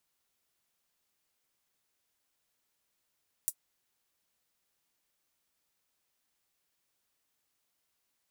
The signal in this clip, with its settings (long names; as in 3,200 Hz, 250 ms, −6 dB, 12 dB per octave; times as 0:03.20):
closed synth hi-hat, high-pass 8,400 Hz, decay 0.07 s